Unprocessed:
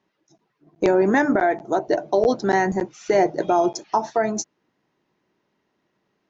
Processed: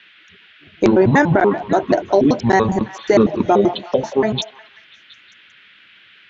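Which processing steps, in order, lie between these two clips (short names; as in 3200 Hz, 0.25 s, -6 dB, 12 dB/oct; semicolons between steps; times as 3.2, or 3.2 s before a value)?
trilling pitch shifter -9 st, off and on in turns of 96 ms; band noise 1400–3400 Hz -54 dBFS; delay with a stepping band-pass 0.18 s, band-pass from 810 Hz, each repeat 0.7 oct, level -12 dB; gain +5.5 dB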